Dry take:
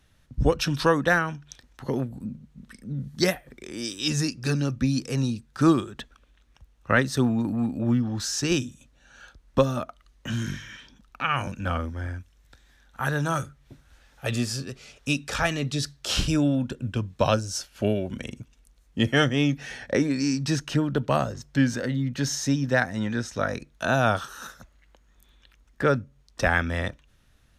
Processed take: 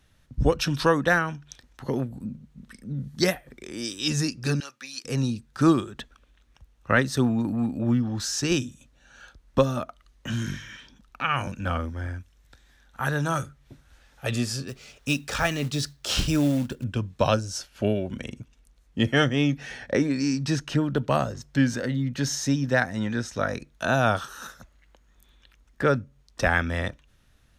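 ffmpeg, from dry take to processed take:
-filter_complex "[0:a]asettb=1/sr,asplit=3[s0][s1][s2];[s0]atrim=end=4.604[s3];[s1]atrim=start=4.6:end=5.05,asetpts=PTS-STARTPTS,afade=t=in:d=0.004:c=qsin,afade=t=out:st=0.446:d=0.004:c=qsin,highpass=1200[s4];[s2]atrim=start=5.046[s5];[s3][s4]acrossfade=d=0.004:c1=hsin:c2=qsin[s6];[s6][s5]acrossfade=d=0.004:c1=qsin:c2=hsin,asettb=1/sr,asplit=3[s7][s8][s9];[s7]atrim=end=14.684[s10];[s8]atrim=start=14.68:end=16.84,asetpts=PTS-STARTPTS,afade=t=in:d=0.004:c=qsin,afade=t=out:st=2.156:d=0.004:c=qsin,acrusher=bits=5:mode=log:mix=0:aa=0.000001[s11];[s9]atrim=start=16.836[s12];[s10][s11]acrossfade=d=0.004:c1=hsin:c2=qsin[s13];[s13][s12]acrossfade=d=0.004:c1=qsin:c2=hsin,asettb=1/sr,asplit=3[s14][s15][s16];[s14]atrim=end=17.374[s17];[s15]atrim=start=17.37:end=20.81,asetpts=PTS-STARTPTS,afade=t=in:d=0.004:c=qsin,afade=t=out:st=3.436:d=0.004:c=qsin,highshelf=f=6300:g=-4.5[s18];[s16]atrim=start=20.806[s19];[s17][s18]acrossfade=d=0.004:c1=hsin:c2=qsin[s20];[s20][s19]acrossfade=d=0.004:c1=qsin:c2=hsin"

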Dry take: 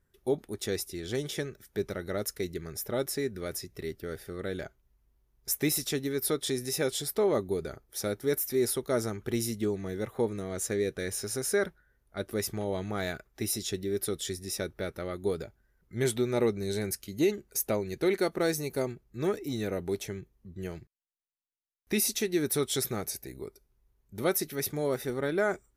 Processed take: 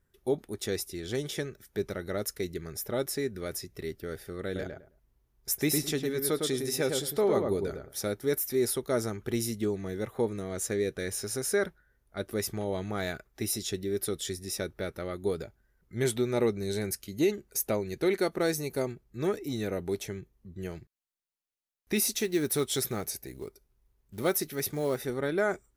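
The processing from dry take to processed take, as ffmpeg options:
-filter_complex "[0:a]asettb=1/sr,asplit=3[s0][s1][s2];[s0]atrim=end=4.454[s3];[s1]atrim=start=4.45:end=7.99,asetpts=PTS-STARTPTS,afade=t=in:d=0.004:c=qsin,afade=t=out:st=3.536:d=0.004:c=qsin,asplit=2[s4][s5];[s5]adelay=106,lowpass=f=1600:p=1,volume=0.668,asplit=2[s6][s7];[s7]adelay=106,lowpass=f=1600:p=1,volume=0.21,asplit=2[s8][s9];[s9]adelay=106,lowpass=f=1600:p=1,volume=0.21[s10];[s4][s6][s8][s10]amix=inputs=4:normalize=0,atrim=end_sample=156114[s11];[s2]atrim=start=7.986[s12];[s3][s11]acrossfade=d=0.004:c1=hsin:c2=qsin[s13];[s13][s12]acrossfade=d=0.004:c1=qsin:c2=hsin,asettb=1/sr,asplit=3[s14][s15][s16];[s14]atrim=end=21.964[s17];[s15]atrim=start=21.96:end=24.96,asetpts=PTS-STARTPTS,afade=t=in:d=0.004:c=qsin,afade=t=out:st=2.996:d=0.004:c=qsin,acrusher=bits=6:mode=log:mix=0:aa=0.000001[s18];[s16]atrim=start=24.956[s19];[s17][s18]acrossfade=d=0.004:c1=hsin:c2=qsin[s20];[s20][s19]acrossfade=d=0.004:c1=qsin:c2=hsin"

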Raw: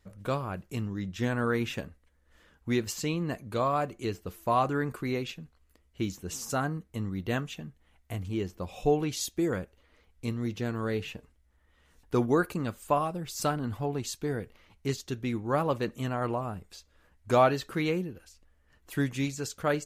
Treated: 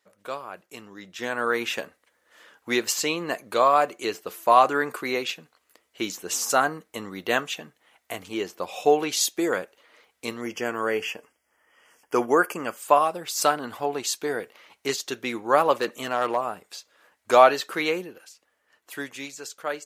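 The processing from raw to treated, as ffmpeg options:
-filter_complex "[0:a]asettb=1/sr,asplit=3[s0][s1][s2];[s0]atrim=end=10.414[s3];[s1]atrim=start=10.41:end=12.77,asetpts=PTS-STARTPTS,afade=t=in:d=0.004:c=qsin,afade=t=out:st=2.356:d=0.004:c=qsin,asuperstop=centerf=3900:order=12:qfactor=3.2[s4];[s2]atrim=start=12.766[s5];[s3][s4]acrossfade=d=0.004:c1=hsin:c2=qsin[s6];[s6][s5]acrossfade=d=0.004:c1=qsin:c2=hsin,asplit=3[s7][s8][s9];[s7]afade=t=out:st=15.79:d=0.02[s10];[s8]volume=15,asoftclip=hard,volume=0.0668,afade=t=in:st=15.79:d=0.02,afade=t=out:st=16.36:d=0.02[s11];[s9]afade=t=in:st=16.36:d=0.02[s12];[s10][s11][s12]amix=inputs=3:normalize=0,dynaudnorm=f=170:g=17:m=3.76,highpass=500"

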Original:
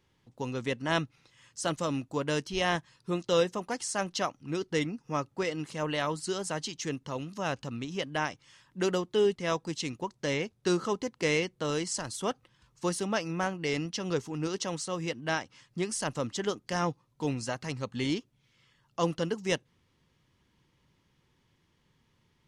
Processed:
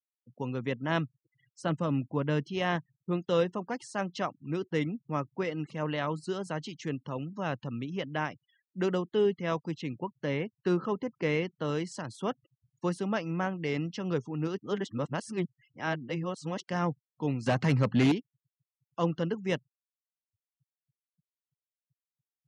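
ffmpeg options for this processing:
-filter_complex "[0:a]asettb=1/sr,asplit=3[s0][s1][s2];[s0]atrim=end=1.624[s3];[s1]atrim=start=1.62:end=2.43,asetpts=PTS-STARTPTS,afade=t=in:d=0.004:c=qsin,afade=t=out:st=0.806:d=0.004:c=qsin,bass=f=250:g=4,treble=f=4000:g=-6[s4];[s2]atrim=start=2.426[s5];[s3][s4]acrossfade=d=0.004:c1=hsin:c2=qsin[s6];[s6][s5]acrossfade=d=0.004:c1=qsin:c2=hsin,asettb=1/sr,asplit=3[s7][s8][s9];[s7]atrim=end=9.754[s10];[s8]atrim=start=9.75:end=11.45,asetpts=PTS-STARTPTS,afade=t=in:d=0.004:c=qsin,afade=t=out:st=1.696:d=0.004:c=qsin,highshelf=f=5400:g=-9[s11];[s9]atrim=start=11.446[s12];[s10][s11]acrossfade=d=0.004:c1=hsin:c2=qsin[s13];[s13][s12]acrossfade=d=0.004:c1=qsin:c2=hsin,asettb=1/sr,asplit=3[s14][s15][s16];[s14]atrim=end=17.464[s17];[s15]atrim=start=17.46:end=18.12,asetpts=PTS-STARTPTS,afade=t=in:d=0.004:c=qsin,afade=t=out:st=0.656:d=0.004:c=qsin,aeval=exprs='0.106*sin(PI/2*2.51*val(0)/0.106)':c=same[s18];[s16]atrim=start=18.116[s19];[s17][s18]acrossfade=d=0.004:c1=hsin:c2=qsin[s20];[s20][s19]acrossfade=d=0.004:c1=qsin:c2=hsin,asplit=3[s21][s22][s23];[s21]atrim=end=14.592[s24];[s22]atrim=start=14.588:end=16.632,asetpts=PTS-STARTPTS,areverse[s25];[s23]atrim=start=16.628[s26];[s24][s25]acrossfade=d=0.004:c1=hsin:c2=hsin[s27];[s27][s26]acrossfade=d=0.004:c1=hsin:c2=hsin,afftfilt=real='re*gte(hypot(re,im),0.00447)':imag='im*gte(hypot(re,im),0.00447)':win_size=1024:overlap=0.75,highpass=f=110:w=0.5412,highpass=f=110:w=1.3066,bass=f=250:g=5,treble=f=4000:g=-13,volume=0.841"

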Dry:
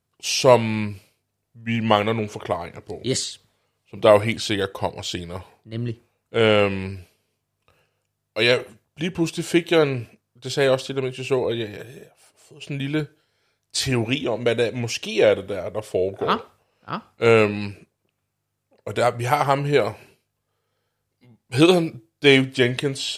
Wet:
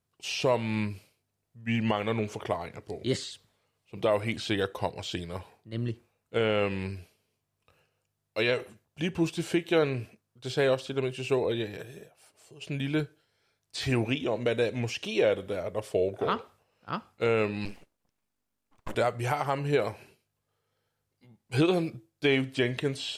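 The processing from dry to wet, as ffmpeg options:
-filter_complex "[0:a]asettb=1/sr,asplit=3[s0][s1][s2];[s0]atrim=end=17.654[s3];[s1]atrim=start=17.65:end=18.95,asetpts=PTS-STARTPTS,afade=t=in:d=0.004:c=qsin,afade=t=out:st=1.296:d=0.004:c=qsin,aeval=exprs='abs(val(0))':c=same[s4];[s2]atrim=start=18.946[s5];[s3][s4]acrossfade=d=0.004:c1=hsin:c2=qsin[s6];[s6][s5]acrossfade=d=0.004:c1=qsin:c2=hsin,acrossover=split=3500[s7][s8];[s8]acompressor=threshold=0.0158:ratio=4:attack=1:release=60[s9];[s7][s9]amix=inputs=2:normalize=0,alimiter=limit=0.299:level=0:latency=1:release=253,volume=0.596"

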